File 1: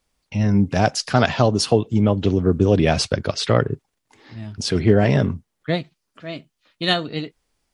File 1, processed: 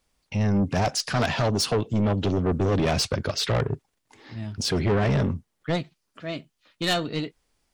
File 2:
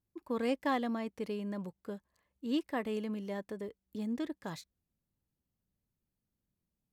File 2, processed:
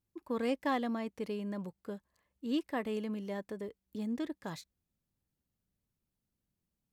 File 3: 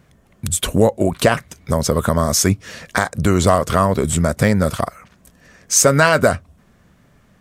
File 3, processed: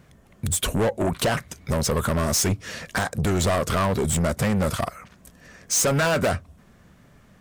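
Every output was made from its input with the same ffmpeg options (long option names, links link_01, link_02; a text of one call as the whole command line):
ffmpeg -i in.wav -af "asoftclip=type=tanh:threshold=-18dB" out.wav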